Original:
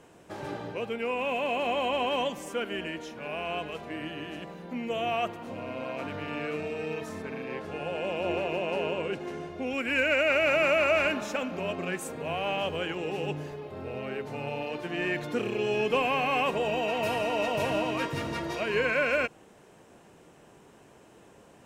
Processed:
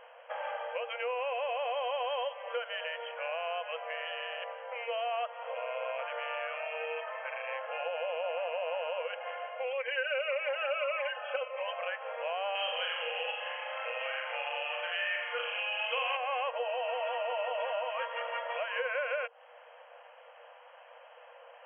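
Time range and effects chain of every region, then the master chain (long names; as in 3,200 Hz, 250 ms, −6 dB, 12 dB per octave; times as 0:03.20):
0:09.72–0:11.73: comb filter 3.9 ms, depth 85% + phaser whose notches keep moving one way falling 1.7 Hz
0:12.55–0:16.17: mu-law and A-law mismatch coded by mu + tilt shelving filter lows −9.5 dB, about 1,100 Hz + flutter between parallel walls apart 7.2 metres, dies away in 0.69 s
whole clip: brick-wall band-pass 470–3,300 Hz; dynamic equaliser 2,400 Hz, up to −5 dB, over −42 dBFS, Q 3; downward compressor 3 to 1, threshold −39 dBFS; level +5 dB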